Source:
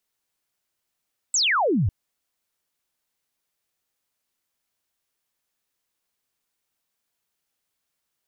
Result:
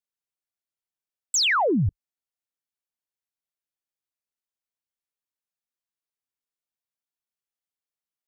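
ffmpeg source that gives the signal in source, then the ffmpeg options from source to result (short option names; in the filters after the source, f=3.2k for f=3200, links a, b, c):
-f lavfi -i "aevalsrc='0.126*clip(t/0.002,0,1)*clip((0.55-t)/0.002,0,1)*sin(2*PI*8200*0.55/log(82/8200)*(exp(log(82/8200)*t/0.55)-1))':d=0.55:s=44100"
-af "afwtdn=0.00891"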